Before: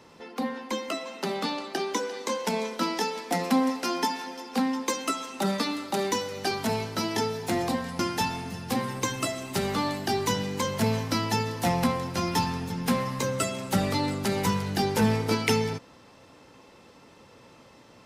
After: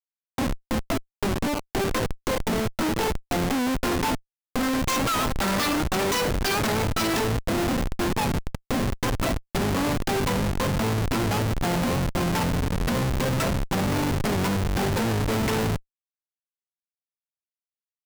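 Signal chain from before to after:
gain on a spectral selection 0:04.62–0:07.18, 1,000–8,100 Hz +8 dB
comparator with hysteresis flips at −27 dBFS
wow of a warped record 78 rpm, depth 100 cents
level +4.5 dB

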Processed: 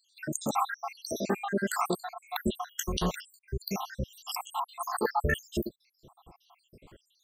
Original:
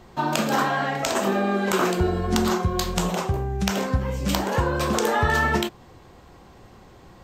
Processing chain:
time-frequency cells dropped at random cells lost 82%
high-shelf EQ 8,700 Hz +7.5 dB
level −2.5 dB

